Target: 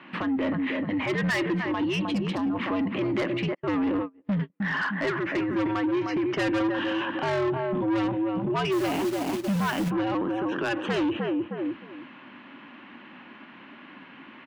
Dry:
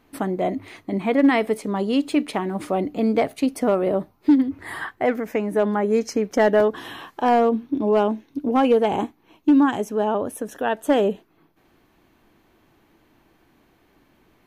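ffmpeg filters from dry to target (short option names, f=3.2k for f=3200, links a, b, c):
-filter_complex "[0:a]highpass=f=360:w=0.5412,highpass=f=360:w=1.3066,equalizer=f=370:t=q:w=4:g=6,equalizer=f=560:t=q:w=4:g=-9,equalizer=f=800:t=q:w=4:g=-8,equalizer=f=1.2k:t=q:w=4:g=4,equalizer=f=1.9k:t=q:w=4:g=4,equalizer=f=2.9k:t=q:w=4:g=7,lowpass=f=3.2k:w=0.5412,lowpass=f=3.2k:w=1.3066,afreqshift=-97,acontrast=64,asplit=2[a][b];[b]adelay=309,lowpass=f=1.3k:p=1,volume=-9.5dB,asplit=2[c][d];[d]adelay=309,lowpass=f=1.3k:p=1,volume=0.22,asplit=2[e][f];[f]adelay=309,lowpass=f=1.3k:p=1,volume=0.22[g];[c][e][g]amix=inputs=3:normalize=0[h];[a][h]amix=inputs=2:normalize=0,asplit=3[i][j][k];[i]afade=t=out:st=3.53:d=0.02[l];[j]agate=range=-52dB:threshold=-20dB:ratio=16:detection=peak,afade=t=in:st=3.53:d=0.02,afade=t=out:st=4.6:d=0.02[m];[k]afade=t=in:st=4.6:d=0.02[n];[l][m][n]amix=inputs=3:normalize=0,asplit=3[o][p][q];[o]afade=t=out:st=8.71:d=0.02[r];[p]acrusher=bits=2:mode=log:mix=0:aa=0.000001,afade=t=in:st=8.71:d=0.02,afade=t=out:st=9.89:d=0.02[s];[q]afade=t=in:st=9.89:d=0.02[t];[r][s][t]amix=inputs=3:normalize=0,asoftclip=type=tanh:threshold=-16.5dB,asettb=1/sr,asplit=3[u][v][w];[u]atrim=end=2.074[x];[v]atrim=start=2.07:end=2.56,asetpts=PTS-STARTPTS,afade=t=in:d=0.004:c=qsin,afade=t=out:st=0.486:d=0.004:c=qsin,equalizer=f=2.1k:t=o:w=1.3:g=-13[y];[w]atrim=start=2.556[z];[x][y]acrossfade=d=0.004:c1=hsin:c2=qsin[aa];[aa][z]acrossfade=d=0.004:c1=qsin:c2=hsin,alimiter=level_in=6dB:limit=-24dB:level=0:latency=1:release=54,volume=-6dB,volume=8dB"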